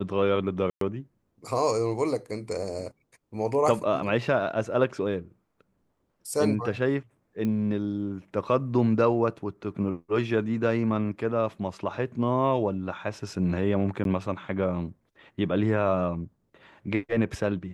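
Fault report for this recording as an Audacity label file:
0.700000	0.810000	drop-out 113 ms
7.450000	7.450000	click −19 dBFS
14.040000	14.050000	drop-out 12 ms

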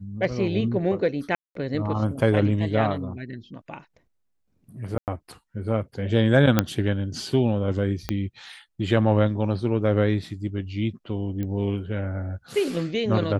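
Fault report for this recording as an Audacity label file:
1.350000	1.550000	drop-out 203 ms
4.980000	5.080000	drop-out 98 ms
6.590000	6.590000	click −4 dBFS
8.090000	8.090000	click −11 dBFS
11.430000	11.430000	click −19 dBFS

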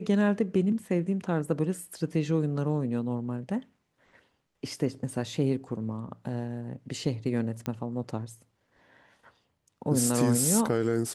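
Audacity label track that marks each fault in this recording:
7.660000	7.660000	click −18 dBFS

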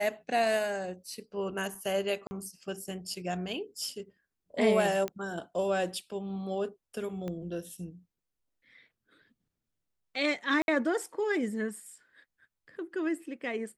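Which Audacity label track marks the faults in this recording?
2.270000	2.310000	drop-out 40 ms
5.080000	5.080000	click −20 dBFS
7.280000	7.280000	click −25 dBFS
10.620000	10.680000	drop-out 61 ms

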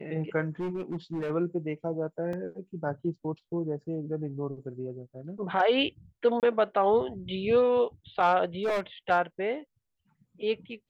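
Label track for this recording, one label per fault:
0.600000	1.310000	clipping −28.5 dBFS
2.330000	2.330000	drop-out 3.3 ms
6.400000	6.430000	drop-out 28 ms
8.630000	8.800000	clipping −24.5 dBFS

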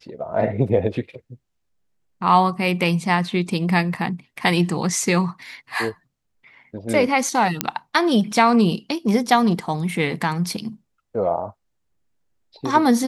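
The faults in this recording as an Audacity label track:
7.610000	7.610000	click −1 dBFS

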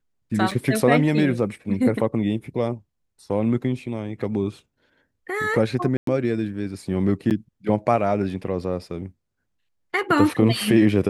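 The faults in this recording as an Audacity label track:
0.510000	0.510000	drop-out 4.1 ms
5.970000	6.070000	drop-out 103 ms
7.300000	7.310000	drop-out 8.4 ms

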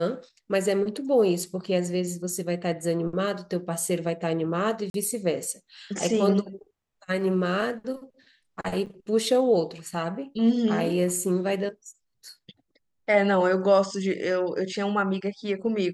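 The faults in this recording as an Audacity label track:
4.900000	4.940000	drop-out 42 ms
8.860000	8.870000	drop-out 6.4 ms

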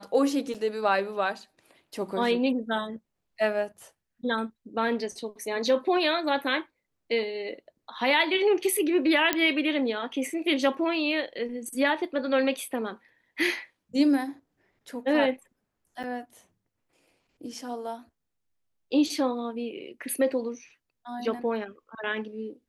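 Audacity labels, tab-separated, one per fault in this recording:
0.540000	0.550000	drop-out 6.5 ms
9.330000	9.330000	click −7 dBFS
16.030000	16.040000	drop-out 6.1 ms

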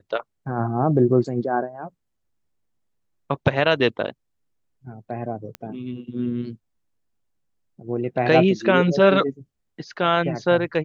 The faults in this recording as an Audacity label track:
5.550000	5.550000	click −17 dBFS

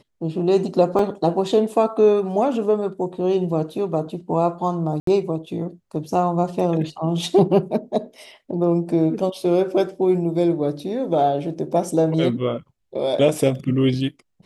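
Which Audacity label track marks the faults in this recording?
0.990000	0.990000	drop-out 2.1 ms
5.000000	5.070000	drop-out 73 ms

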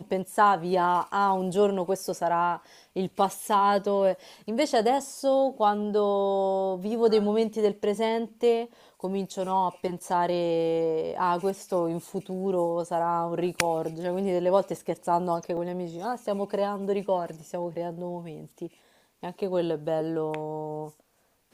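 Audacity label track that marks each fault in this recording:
15.570000	15.570000	drop-out 3.6 ms

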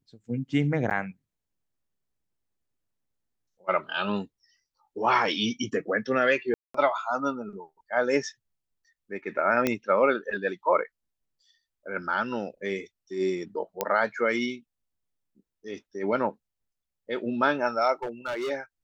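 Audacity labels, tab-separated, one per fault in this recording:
0.900000	0.910000	drop-out 8.5 ms
6.540000	6.740000	drop-out 204 ms
9.670000	9.670000	click −10 dBFS
13.810000	13.810000	click −10 dBFS
18.030000	18.510000	clipping −27.5 dBFS

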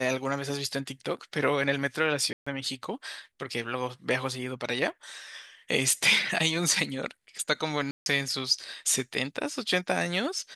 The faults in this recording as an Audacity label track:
2.330000	2.460000	drop-out 135 ms
7.910000	8.060000	drop-out 151 ms

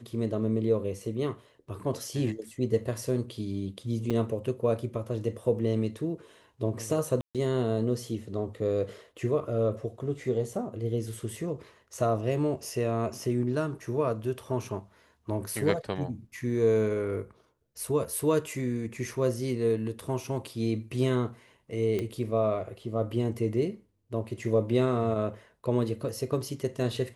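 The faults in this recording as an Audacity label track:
4.100000	4.110000	drop-out 5.7 ms
7.210000	7.350000	drop-out 137 ms
20.000000	20.000000	drop-out 2.5 ms
21.990000	21.990000	click −19 dBFS

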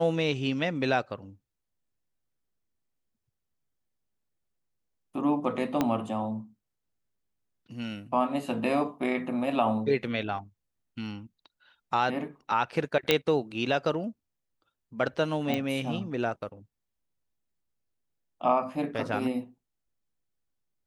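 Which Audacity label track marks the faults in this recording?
5.810000	5.810000	click −12 dBFS
13.110000	13.110000	click −7 dBFS
15.540000	15.540000	click −16 dBFS

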